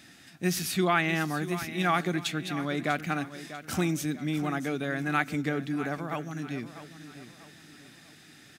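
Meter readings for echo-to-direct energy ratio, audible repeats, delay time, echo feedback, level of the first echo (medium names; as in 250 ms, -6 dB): -12.5 dB, 3, 644 ms, 38%, -13.0 dB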